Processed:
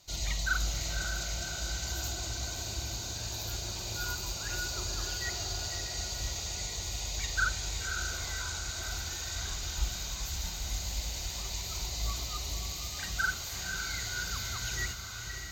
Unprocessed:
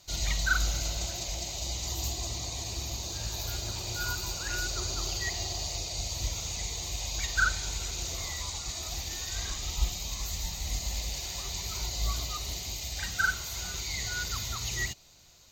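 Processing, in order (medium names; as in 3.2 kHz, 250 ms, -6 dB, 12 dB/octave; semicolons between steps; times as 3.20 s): echo that smears into a reverb 573 ms, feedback 63%, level -6.5 dB; in parallel at -11.5 dB: saturation -23.5 dBFS, distortion -16 dB; on the sum: trim -5 dB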